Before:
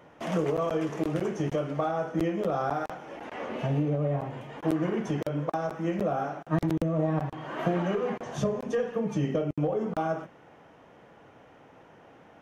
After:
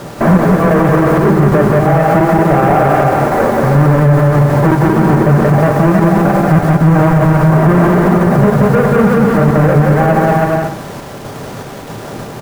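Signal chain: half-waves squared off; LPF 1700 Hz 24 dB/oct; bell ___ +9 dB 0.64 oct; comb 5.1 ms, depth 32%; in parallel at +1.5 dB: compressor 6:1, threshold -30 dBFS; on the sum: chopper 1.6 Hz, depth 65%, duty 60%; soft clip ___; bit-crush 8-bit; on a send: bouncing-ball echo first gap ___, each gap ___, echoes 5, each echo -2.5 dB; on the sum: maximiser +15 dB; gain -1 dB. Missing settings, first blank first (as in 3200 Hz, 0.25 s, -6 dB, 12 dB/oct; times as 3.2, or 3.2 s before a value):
110 Hz, -9 dBFS, 0.18 s, 0.75×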